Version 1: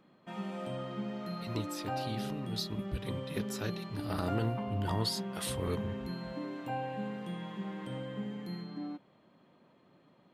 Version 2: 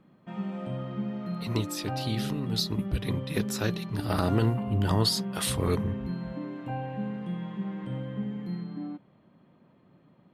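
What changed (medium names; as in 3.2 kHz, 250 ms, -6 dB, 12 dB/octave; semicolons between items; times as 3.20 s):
speech +8.0 dB; background: add tone controls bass +9 dB, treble -10 dB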